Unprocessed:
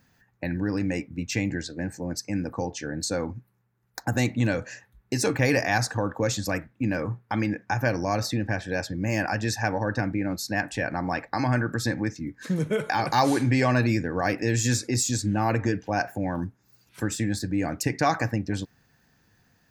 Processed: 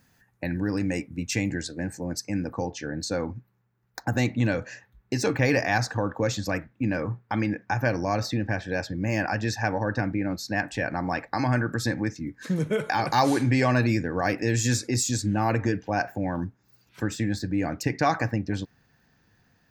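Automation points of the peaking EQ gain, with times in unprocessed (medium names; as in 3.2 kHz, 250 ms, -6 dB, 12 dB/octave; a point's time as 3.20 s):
peaking EQ 10 kHz 0.74 oct
1.64 s +8.5 dB
2.29 s -0.5 dB
2.82 s -12.5 dB
10.50 s -12.5 dB
10.98 s -2 dB
15.43 s -2 dB
16.02 s -13.5 dB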